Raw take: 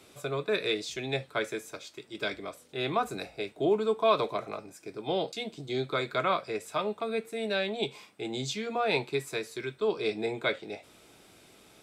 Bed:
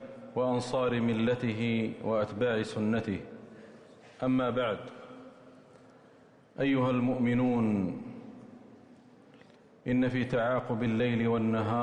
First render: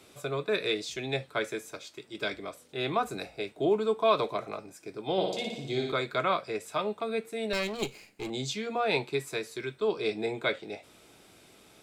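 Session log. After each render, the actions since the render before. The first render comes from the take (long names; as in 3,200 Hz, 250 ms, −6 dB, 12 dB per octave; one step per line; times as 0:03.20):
0:05.12–0:05.92: flutter between parallel walls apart 9.9 metres, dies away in 0.82 s
0:07.53–0:08.30: lower of the sound and its delayed copy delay 0.42 ms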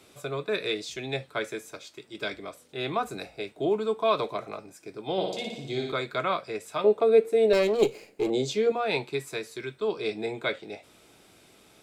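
0:06.84–0:08.72: parametric band 460 Hz +14.5 dB 1.2 octaves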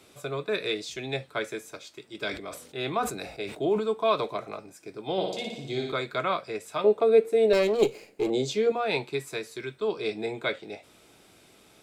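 0:02.21–0:03.81: level that may fall only so fast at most 86 dB per second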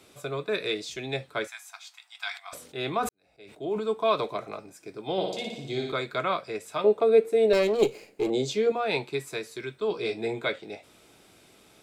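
0:01.47–0:02.53: linear-phase brick-wall high-pass 670 Hz
0:03.09–0:03.91: fade in quadratic
0:09.89–0:10.47: double-tracking delay 17 ms −6 dB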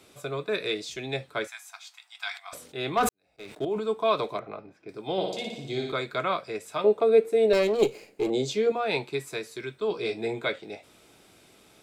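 0:02.97–0:03.65: leveller curve on the samples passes 2
0:04.39–0:04.89: high-frequency loss of the air 310 metres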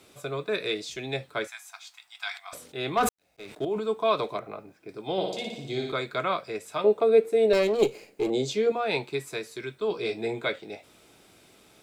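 bit reduction 12 bits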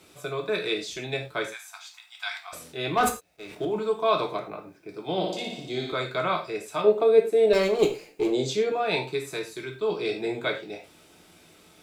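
reverb whose tail is shaped and stops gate 130 ms falling, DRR 2.5 dB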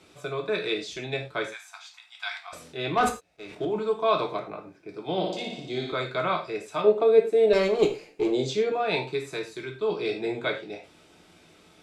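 high-frequency loss of the air 51 metres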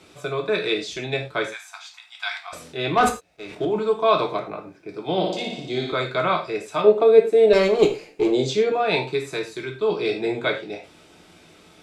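level +5 dB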